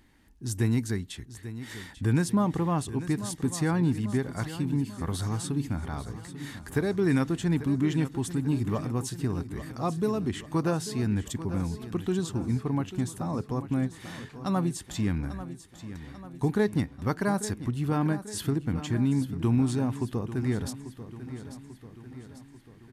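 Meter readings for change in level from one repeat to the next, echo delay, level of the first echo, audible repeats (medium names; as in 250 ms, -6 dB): -5.0 dB, 842 ms, -13.0 dB, 5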